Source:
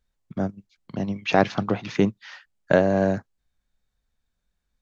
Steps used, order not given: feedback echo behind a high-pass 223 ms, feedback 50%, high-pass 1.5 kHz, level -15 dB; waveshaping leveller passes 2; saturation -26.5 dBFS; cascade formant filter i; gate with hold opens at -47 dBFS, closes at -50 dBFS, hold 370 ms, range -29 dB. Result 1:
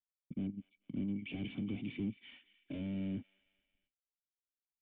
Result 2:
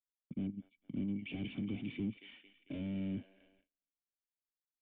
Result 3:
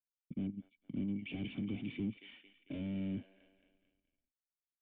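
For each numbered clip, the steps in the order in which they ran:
saturation > waveshaping leveller > feedback echo behind a high-pass > gate with hold > cascade formant filter; feedback echo behind a high-pass > saturation > waveshaping leveller > cascade formant filter > gate with hold; feedback echo behind a high-pass > saturation > waveshaping leveller > gate with hold > cascade formant filter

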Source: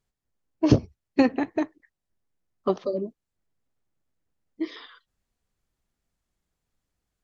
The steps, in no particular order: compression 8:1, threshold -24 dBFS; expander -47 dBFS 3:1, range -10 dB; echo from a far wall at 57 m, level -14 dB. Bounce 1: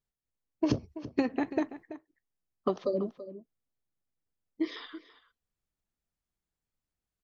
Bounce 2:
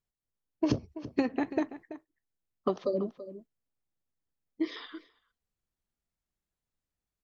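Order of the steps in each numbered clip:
expander > compression > echo from a far wall; compression > echo from a far wall > expander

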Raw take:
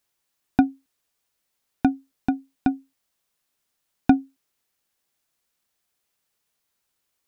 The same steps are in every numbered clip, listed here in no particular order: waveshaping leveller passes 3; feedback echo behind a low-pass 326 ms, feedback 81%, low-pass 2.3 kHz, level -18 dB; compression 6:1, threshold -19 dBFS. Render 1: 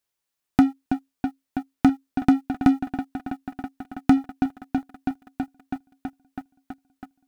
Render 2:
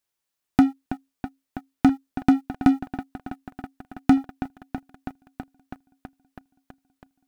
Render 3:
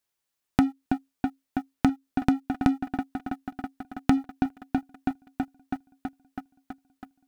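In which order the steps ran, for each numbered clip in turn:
feedback echo behind a low-pass > compression > waveshaping leveller; compression > feedback echo behind a low-pass > waveshaping leveller; feedback echo behind a low-pass > waveshaping leveller > compression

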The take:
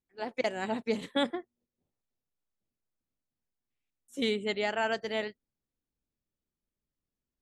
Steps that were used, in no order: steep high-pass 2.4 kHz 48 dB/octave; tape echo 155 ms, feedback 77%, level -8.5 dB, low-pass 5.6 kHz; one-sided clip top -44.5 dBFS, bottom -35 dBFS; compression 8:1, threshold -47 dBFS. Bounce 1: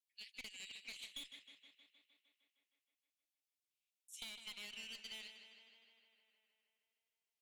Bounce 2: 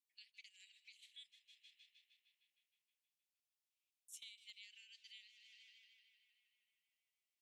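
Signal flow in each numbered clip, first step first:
steep high-pass > one-sided clip > compression > tape echo; tape echo > compression > steep high-pass > one-sided clip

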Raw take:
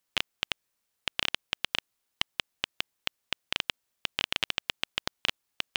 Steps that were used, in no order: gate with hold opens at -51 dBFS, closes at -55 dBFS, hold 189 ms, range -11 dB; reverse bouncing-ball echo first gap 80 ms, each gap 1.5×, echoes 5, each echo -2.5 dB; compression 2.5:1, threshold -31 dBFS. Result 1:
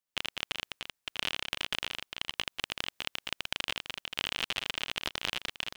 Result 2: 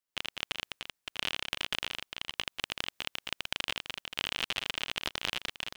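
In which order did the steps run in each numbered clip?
gate with hold > compression > reverse bouncing-ball echo; compression > gate with hold > reverse bouncing-ball echo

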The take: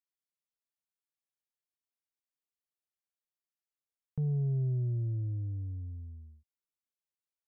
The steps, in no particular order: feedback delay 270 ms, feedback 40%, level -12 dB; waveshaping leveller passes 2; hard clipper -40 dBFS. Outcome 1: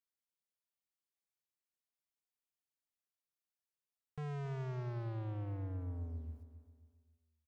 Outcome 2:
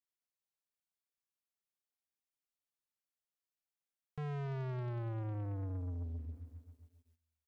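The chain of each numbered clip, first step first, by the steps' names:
hard clipper > waveshaping leveller > feedback delay; hard clipper > feedback delay > waveshaping leveller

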